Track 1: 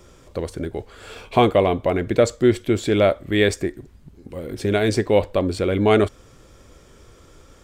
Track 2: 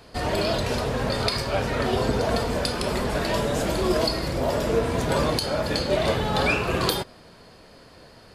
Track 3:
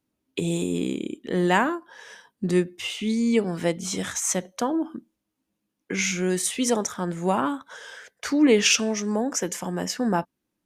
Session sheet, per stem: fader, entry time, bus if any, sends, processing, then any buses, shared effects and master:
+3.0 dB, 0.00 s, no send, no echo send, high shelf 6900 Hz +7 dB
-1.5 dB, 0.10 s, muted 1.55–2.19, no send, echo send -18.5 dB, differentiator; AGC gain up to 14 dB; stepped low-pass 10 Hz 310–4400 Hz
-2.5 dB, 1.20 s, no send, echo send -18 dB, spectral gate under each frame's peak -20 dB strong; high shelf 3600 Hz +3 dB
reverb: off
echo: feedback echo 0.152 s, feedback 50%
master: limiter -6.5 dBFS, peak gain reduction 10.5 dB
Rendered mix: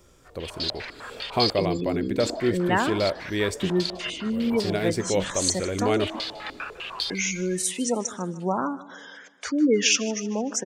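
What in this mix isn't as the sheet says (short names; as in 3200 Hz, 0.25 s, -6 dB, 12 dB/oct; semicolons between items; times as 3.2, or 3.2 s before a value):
stem 1 +3.0 dB -> -8.0 dB; stem 2 -1.5 dB -> -10.5 dB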